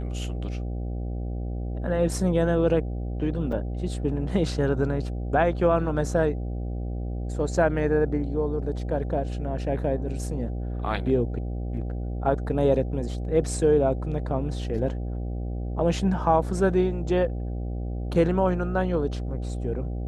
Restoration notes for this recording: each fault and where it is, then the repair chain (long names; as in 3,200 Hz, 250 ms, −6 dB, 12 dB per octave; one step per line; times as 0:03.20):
mains buzz 60 Hz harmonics 13 −30 dBFS
0:03.52: drop-out 4.9 ms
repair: hum removal 60 Hz, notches 13
repair the gap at 0:03.52, 4.9 ms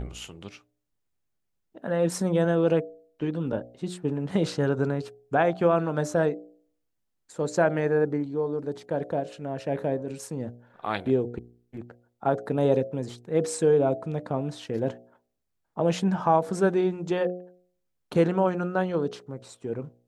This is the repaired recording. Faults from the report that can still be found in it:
none of them is left